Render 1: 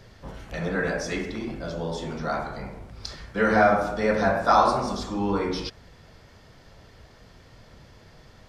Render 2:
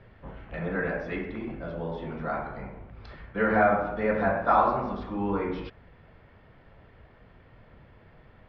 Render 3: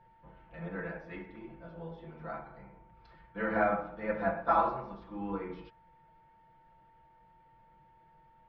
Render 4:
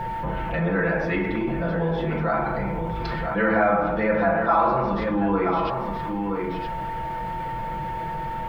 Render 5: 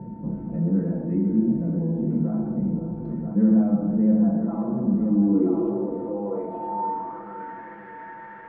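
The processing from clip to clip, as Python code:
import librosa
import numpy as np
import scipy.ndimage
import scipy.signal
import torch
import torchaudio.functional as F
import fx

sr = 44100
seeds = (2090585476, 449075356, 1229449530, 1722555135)

y1 = scipy.signal.sosfilt(scipy.signal.butter(4, 2700.0, 'lowpass', fs=sr, output='sos'), x)
y1 = y1 * 10.0 ** (-3.0 / 20.0)
y2 = y1 + 0.74 * np.pad(y1, (int(6.0 * sr / 1000.0), 0))[:len(y1)]
y2 = y2 + 10.0 ** (-45.0 / 20.0) * np.sin(2.0 * np.pi * 900.0 * np.arange(len(y2)) / sr)
y2 = fx.upward_expand(y2, sr, threshold_db=-34.0, expansion=1.5)
y2 = y2 * 10.0 ** (-6.5 / 20.0)
y3 = y2 + 10.0 ** (-15.5 / 20.0) * np.pad(y2, (int(975 * sr / 1000.0), 0))[:len(y2)]
y3 = fx.env_flatten(y3, sr, amount_pct=70)
y3 = y3 * 10.0 ** (5.5 / 20.0)
y4 = fx.tilt_shelf(y3, sr, db=9.0, hz=1100.0)
y4 = fx.filter_sweep_bandpass(y4, sr, from_hz=230.0, to_hz=1700.0, start_s=5.18, end_s=7.63, q=5.4)
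y4 = fx.echo_feedback(y4, sr, ms=519, feedback_pct=56, wet_db=-11.5)
y4 = y4 * 10.0 ** (4.0 / 20.0)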